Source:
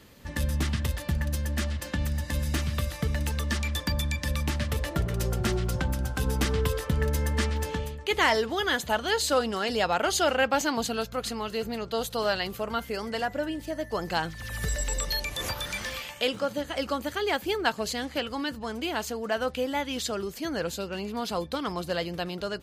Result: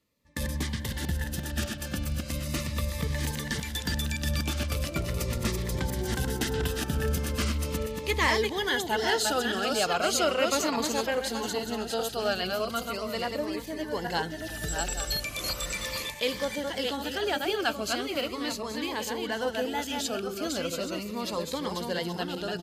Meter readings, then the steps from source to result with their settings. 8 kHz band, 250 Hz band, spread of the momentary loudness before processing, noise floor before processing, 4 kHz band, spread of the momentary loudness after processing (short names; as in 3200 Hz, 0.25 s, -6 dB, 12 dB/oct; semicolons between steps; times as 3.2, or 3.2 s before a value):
+1.5 dB, -0.5 dB, 7 LU, -43 dBFS, +0.5 dB, 7 LU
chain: regenerating reverse delay 0.414 s, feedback 41%, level -3.5 dB; gate with hold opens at -24 dBFS; low shelf 150 Hz -6.5 dB; on a send: echo 0.322 s -24 dB; on the sum: cascading phaser falling 0.38 Hz